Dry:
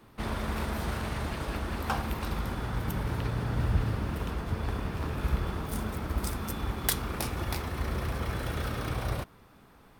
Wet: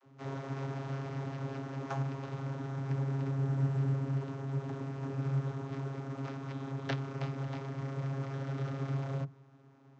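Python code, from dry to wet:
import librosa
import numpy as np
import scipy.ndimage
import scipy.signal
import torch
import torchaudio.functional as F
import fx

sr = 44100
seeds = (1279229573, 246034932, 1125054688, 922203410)

y = np.repeat(x[::6], 6)[:len(x)]
y = fx.vocoder(y, sr, bands=32, carrier='saw', carrier_hz=136.0)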